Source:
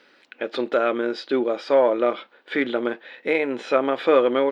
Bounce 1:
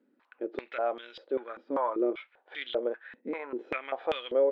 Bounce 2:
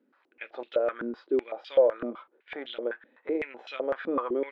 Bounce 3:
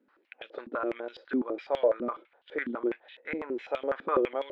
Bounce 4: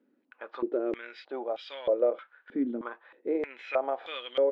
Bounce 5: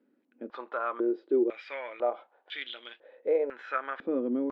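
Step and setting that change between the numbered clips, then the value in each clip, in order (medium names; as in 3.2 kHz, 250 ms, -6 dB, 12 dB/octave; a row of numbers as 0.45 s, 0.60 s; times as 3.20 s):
step-sequenced band-pass, rate: 5.1 Hz, 7.9 Hz, 12 Hz, 3.2 Hz, 2 Hz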